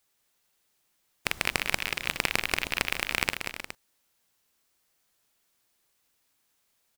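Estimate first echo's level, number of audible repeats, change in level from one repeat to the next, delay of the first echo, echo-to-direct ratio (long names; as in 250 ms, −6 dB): −7.5 dB, 3, repeats not evenly spaced, 185 ms, −5.5 dB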